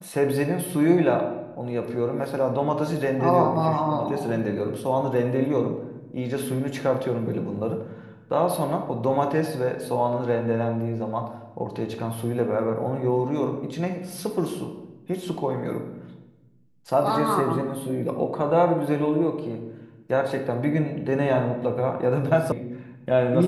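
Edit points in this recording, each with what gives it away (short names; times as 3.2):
22.52 sound cut off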